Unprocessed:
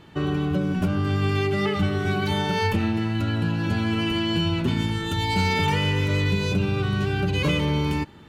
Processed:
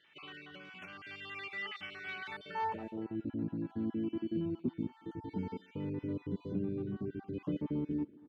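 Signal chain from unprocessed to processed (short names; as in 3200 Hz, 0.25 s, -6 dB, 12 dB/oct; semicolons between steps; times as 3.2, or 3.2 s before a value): random spectral dropouts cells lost 33%; band-pass sweep 2300 Hz -> 280 Hz, 2.17–3.26; speakerphone echo 0.23 s, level -21 dB; gain -5 dB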